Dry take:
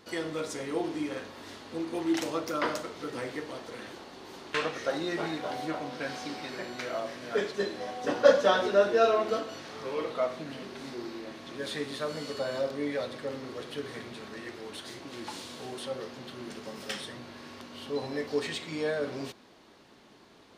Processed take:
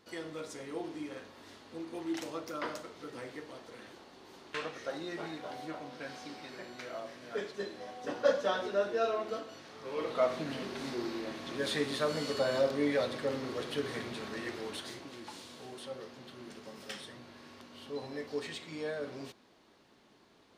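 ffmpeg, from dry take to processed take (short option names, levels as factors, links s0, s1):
-af "volume=1.26,afade=t=in:st=9.82:d=0.52:silence=0.316228,afade=t=out:st=14.61:d=0.59:silence=0.354813"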